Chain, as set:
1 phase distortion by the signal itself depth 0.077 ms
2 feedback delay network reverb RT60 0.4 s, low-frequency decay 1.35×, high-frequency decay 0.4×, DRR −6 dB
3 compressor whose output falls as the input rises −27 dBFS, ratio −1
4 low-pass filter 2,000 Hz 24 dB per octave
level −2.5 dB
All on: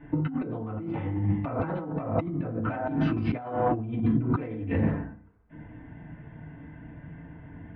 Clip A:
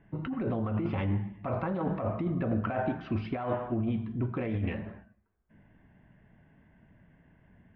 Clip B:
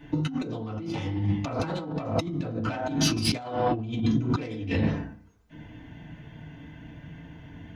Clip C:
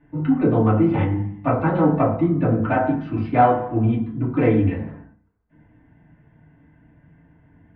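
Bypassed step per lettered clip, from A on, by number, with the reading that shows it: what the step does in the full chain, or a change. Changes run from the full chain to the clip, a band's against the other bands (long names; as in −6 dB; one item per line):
2, change in momentary loudness spread −15 LU
4, 2 kHz band +3.0 dB
3, change in momentary loudness spread −12 LU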